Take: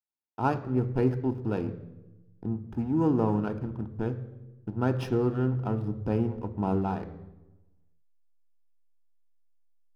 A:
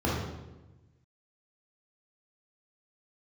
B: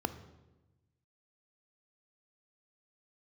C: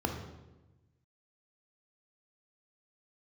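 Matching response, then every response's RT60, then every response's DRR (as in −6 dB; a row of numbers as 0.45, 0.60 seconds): B; 1.1, 1.1, 1.1 seconds; −5.5, 11.5, 3.5 decibels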